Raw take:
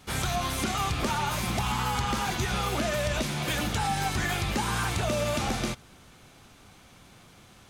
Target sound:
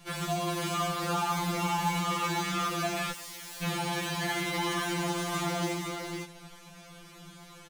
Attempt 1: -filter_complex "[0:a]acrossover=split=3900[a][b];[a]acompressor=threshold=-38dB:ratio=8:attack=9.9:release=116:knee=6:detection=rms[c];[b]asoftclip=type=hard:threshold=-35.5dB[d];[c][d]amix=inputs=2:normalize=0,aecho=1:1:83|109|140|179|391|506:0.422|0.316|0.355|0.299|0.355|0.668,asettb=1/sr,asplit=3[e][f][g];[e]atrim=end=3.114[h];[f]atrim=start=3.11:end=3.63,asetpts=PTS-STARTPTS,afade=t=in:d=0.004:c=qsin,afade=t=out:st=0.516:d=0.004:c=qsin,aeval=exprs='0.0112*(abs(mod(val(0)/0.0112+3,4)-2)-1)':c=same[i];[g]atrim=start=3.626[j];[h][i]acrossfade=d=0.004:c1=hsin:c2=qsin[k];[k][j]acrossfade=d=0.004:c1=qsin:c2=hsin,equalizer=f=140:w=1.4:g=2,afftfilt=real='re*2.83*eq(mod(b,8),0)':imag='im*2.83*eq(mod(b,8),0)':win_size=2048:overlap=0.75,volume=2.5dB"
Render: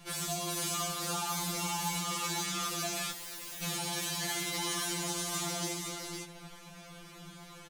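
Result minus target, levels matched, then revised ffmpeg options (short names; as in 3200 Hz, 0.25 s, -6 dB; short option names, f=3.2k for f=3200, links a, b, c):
compressor: peak gain reduction +7.5 dB; hard clip: distortion -9 dB
-filter_complex "[0:a]acrossover=split=3900[a][b];[a]acompressor=threshold=-29.5dB:ratio=8:attack=9.9:release=116:knee=6:detection=rms[c];[b]asoftclip=type=hard:threshold=-45.5dB[d];[c][d]amix=inputs=2:normalize=0,aecho=1:1:83|109|140|179|391|506:0.422|0.316|0.355|0.299|0.355|0.668,asettb=1/sr,asplit=3[e][f][g];[e]atrim=end=3.114[h];[f]atrim=start=3.11:end=3.63,asetpts=PTS-STARTPTS,afade=t=in:d=0.004:c=qsin,afade=t=out:st=0.516:d=0.004:c=qsin,aeval=exprs='0.0112*(abs(mod(val(0)/0.0112+3,4)-2)-1)':c=same[i];[g]atrim=start=3.626[j];[h][i]acrossfade=d=0.004:c1=hsin:c2=qsin[k];[k][j]acrossfade=d=0.004:c1=qsin:c2=hsin,equalizer=f=140:w=1.4:g=2,afftfilt=real='re*2.83*eq(mod(b,8),0)':imag='im*2.83*eq(mod(b,8),0)':win_size=2048:overlap=0.75,volume=2.5dB"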